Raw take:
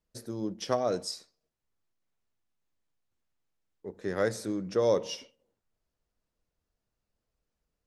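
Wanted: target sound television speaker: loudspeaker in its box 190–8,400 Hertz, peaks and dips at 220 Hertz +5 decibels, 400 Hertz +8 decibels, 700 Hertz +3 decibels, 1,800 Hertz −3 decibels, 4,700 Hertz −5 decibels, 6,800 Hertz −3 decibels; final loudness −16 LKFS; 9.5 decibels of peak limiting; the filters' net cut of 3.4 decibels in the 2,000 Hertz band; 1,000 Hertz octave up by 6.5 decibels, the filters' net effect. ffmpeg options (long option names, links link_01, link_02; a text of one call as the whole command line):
ffmpeg -i in.wav -af "equalizer=frequency=1000:width_type=o:gain=8.5,equalizer=frequency=2000:width_type=o:gain=-7,alimiter=limit=-19.5dB:level=0:latency=1,highpass=frequency=190:width=0.5412,highpass=frequency=190:width=1.3066,equalizer=frequency=220:width_type=q:width=4:gain=5,equalizer=frequency=400:width_type=q:width=4:gain=8,equalizer=frequency=700:width_type=q:width=4:gain=3,equalizer=frequency=1800:width_type=q:width=4:gain=-3,equalizer=frequency=4700:width_type=q:width=4:gain=-5,equalizer=frequency=6800:width_type=q:width=4:gain=-3,lowpass=frequency=8400:width=0.5412,lowpass=frequency=8400:width=1.3066,volume=14dB" out.wav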